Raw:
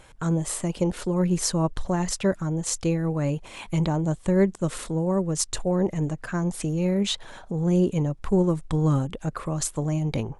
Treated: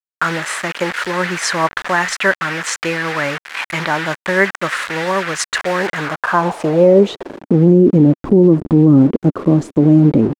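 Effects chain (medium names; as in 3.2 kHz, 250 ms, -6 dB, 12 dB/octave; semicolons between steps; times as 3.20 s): word length cut 6-bit, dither none; band-pass sweep 1.7 kHz -> 290 Hz, 5.88–7.41 s; loudness maximiser +25 dB; trim -1 dB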